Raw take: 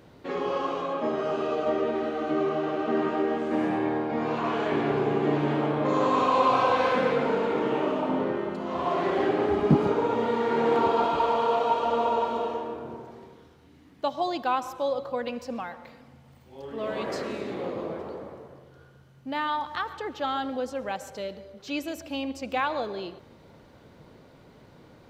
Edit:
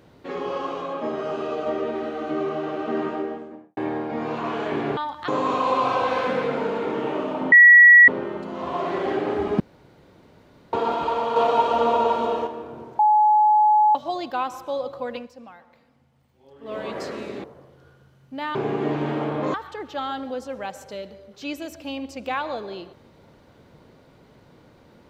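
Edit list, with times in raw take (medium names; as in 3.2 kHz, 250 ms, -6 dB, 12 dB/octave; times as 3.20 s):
2.99–3.77 s: studio fade out
4.97–5.96 s: swap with 19.49–19.80 s
8.20 s: add tone 1.93 kHz -6.5 dBFS 0.56 s
9.72–10.85 s: room tone
11.48–12.59 s: gain +5 dB
13.11–14.07 s: bleep 849 Hz -13 dBFS
15.28–16.86 s: dip -10 dB, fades 0.14 s
17.56–18.38 s: delete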